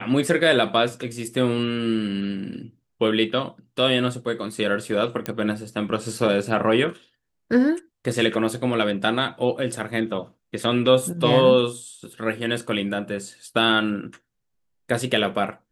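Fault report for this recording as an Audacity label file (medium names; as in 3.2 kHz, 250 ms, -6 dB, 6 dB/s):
5.260000	5.260000	pop -11 dBFS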